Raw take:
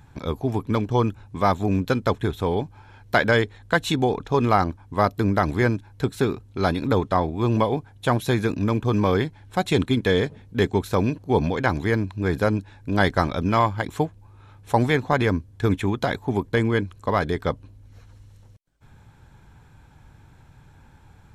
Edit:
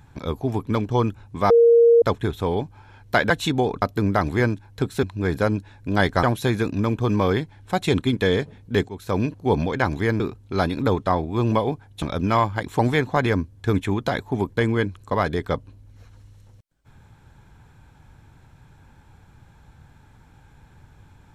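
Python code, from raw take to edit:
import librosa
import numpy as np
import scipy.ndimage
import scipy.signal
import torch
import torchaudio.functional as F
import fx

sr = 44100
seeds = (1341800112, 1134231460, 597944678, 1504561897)

y = fx.edit(x, sr, fx.bleep(start_s=1.5, length_s=0.52, hz=467.0, db=-10.0),
    fx.cut(start_s=3.3, length_s=0.44),
    fx.cut(start_s=4.26, length_s=0.78),
    fx.swap(start_s=6.25, length_s=1.82, other_s=12.04, other_length_s=1.2),
    fx.fade_in_from(start_s=10.73, length_s=0.33, floor_db=-18.5),
    fx.cut(start_s=14.01, length_s=0.74), tone=tone)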